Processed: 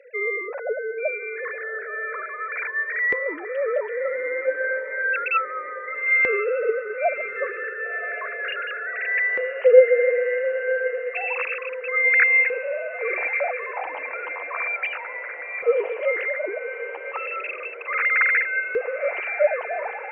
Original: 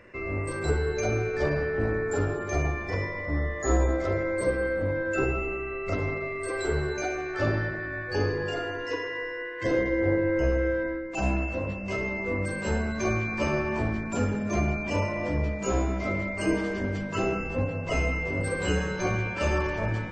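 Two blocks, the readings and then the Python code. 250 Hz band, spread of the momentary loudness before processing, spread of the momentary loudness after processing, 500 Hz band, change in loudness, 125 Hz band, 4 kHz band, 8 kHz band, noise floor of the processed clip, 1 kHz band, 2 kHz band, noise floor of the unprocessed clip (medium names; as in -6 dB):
under -15 dB, 6 LU, 12 LU, +5.5 dB, +5.0 dB, under -35 dB, no reading, under -40 dB, -34 dBFS, +3.5 dB, +10.0 dB, -34 dBFS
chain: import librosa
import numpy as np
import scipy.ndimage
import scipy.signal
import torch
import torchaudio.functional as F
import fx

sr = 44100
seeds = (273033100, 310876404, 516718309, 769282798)

y = fx.sine_speech(x, sr)
y = fx.filter_lfo_highpass(y, sr, shape='saw_up', hz=0.32, low_hz=440.0, high_hz=1800.0, q=4.8)
y = fx.echo_diffused(y, sr, ms=1086, feedback_pct=58, wet_db=-12.5)
y = F.gain(torch.from_numpy(y), -1.0).numpy()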